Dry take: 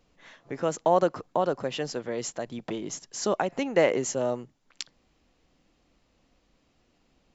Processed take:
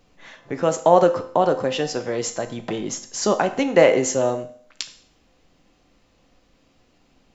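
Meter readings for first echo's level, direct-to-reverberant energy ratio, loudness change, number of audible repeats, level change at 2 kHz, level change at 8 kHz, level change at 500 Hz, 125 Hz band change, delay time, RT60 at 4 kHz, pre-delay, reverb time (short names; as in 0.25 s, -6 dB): none, 7.0 dB, +7.5 dB, none, +7.0 dB, n/a, +8.0 dB, +7.0 dB, none, 0.55 s, 4 ms, 0.55 s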